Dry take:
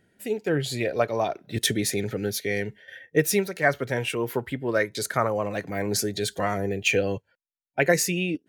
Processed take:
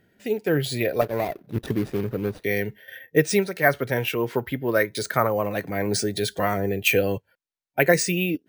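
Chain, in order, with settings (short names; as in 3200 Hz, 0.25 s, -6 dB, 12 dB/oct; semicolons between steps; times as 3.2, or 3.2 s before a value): 1.01–2.44 median filter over 41 samples; careless resampling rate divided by 3×, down filtered, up hold; gain +2.5 dB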